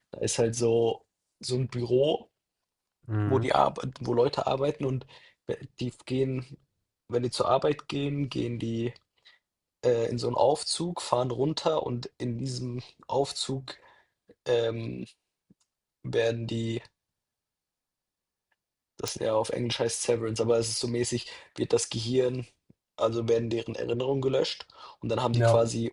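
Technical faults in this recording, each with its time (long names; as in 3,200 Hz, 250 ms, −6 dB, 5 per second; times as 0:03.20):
0:19.08: click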